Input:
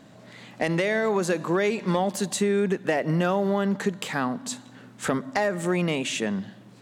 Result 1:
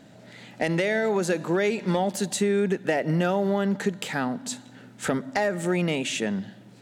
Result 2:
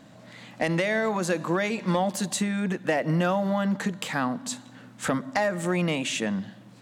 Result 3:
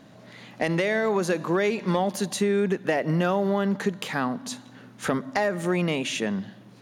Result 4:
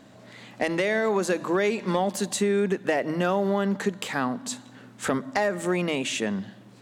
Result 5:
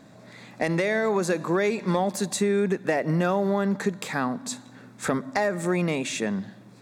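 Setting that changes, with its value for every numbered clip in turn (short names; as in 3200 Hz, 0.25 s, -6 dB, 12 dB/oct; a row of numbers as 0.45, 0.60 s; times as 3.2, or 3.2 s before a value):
notch, frequency: 1100, 400, 7800, 160, 3000 Hz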